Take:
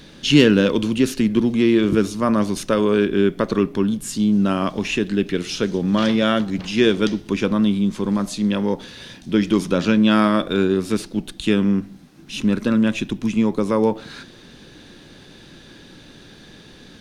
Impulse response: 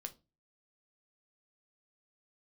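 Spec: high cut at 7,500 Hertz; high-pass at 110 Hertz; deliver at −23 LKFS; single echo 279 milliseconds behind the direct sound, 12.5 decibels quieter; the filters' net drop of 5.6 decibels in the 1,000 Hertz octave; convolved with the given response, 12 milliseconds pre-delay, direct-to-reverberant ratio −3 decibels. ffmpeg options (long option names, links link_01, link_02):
-filter_complex "[0:a]highpass=110,lowpass=7500,equalizer=frequency=1000:width_type=o:gain=-7.5,aecho=1:1:279:0.237,asplit=2[link_01][link_02];[1:a]atrim=start_sample=2205,adelay=12[link_03];[link_02][link_03]afir=irnorm=-1:irlink=0,volume=6.5dB[link_04];[link_01][link_04]amix=inputs=2:normalize=0,volume=-6.5dB"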